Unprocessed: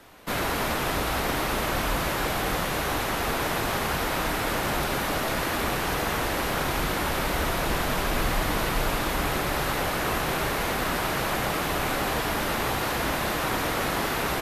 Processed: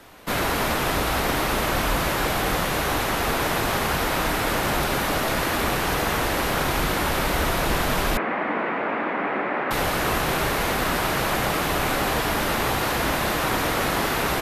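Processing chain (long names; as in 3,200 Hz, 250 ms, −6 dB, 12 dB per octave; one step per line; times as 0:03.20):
0:08.17–0:09.71: Chebyshev band-pass filter 220–2,200 Hz, order 3
level +3.5 dB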